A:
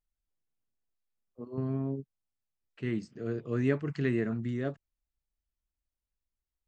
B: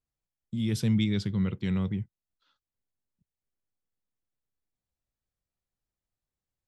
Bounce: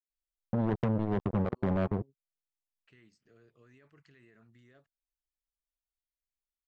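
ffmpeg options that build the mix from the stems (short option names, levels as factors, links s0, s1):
-filter_complex "[0:a]equalizer=f=210:w=0.35:g=-13.5,alimiter=level_in=3.35:limit=0.0631:level=0:latency=1:release=25,volume=0.299,acompressor=threshold=0.00158:ratio=2,adelay=100,volume=0.376[s0];[1:a]acompressor=threshold=0.0316:ratio=10,lowpass=f=650:t=q:w=7.6,acrusher=bits=4:mix=0:aa=0.5,volume=1.33[s1];[s0][s1]amix=inputs=2:normalize=0"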